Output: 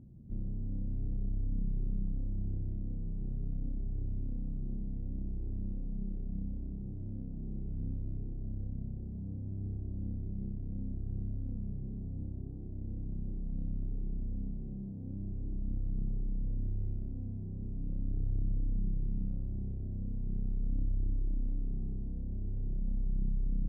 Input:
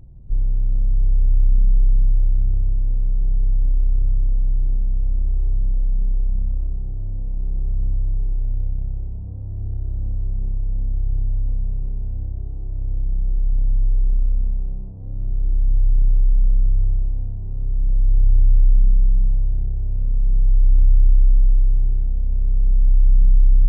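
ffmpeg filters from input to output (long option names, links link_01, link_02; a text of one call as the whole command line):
ffmpeg -i in.wav -af "bandpass=frequency=230:width_type=q:width=2.3:csg=0,volume=4dB" out.wav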